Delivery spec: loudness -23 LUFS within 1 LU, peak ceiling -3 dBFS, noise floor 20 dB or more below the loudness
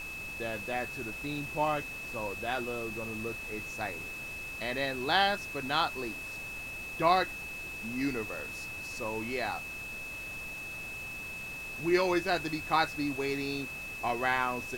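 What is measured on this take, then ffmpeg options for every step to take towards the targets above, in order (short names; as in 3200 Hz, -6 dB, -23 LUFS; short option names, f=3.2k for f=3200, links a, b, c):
steady tone 2600 Hz; tone level -39 dBFS; noise floor -41 dBFS; noise floor target -53 dBFS; loudness -33.0 LUFS; peak -11.5 dBFS; loudness target -23.0 LUFS
-> -af "bandreject=f=2.6k:w=30"
-af "afftdn=nr=12:nf=-41"
-af "volume=10dB,alimiter=limit=-3dB:level=0:latency=1"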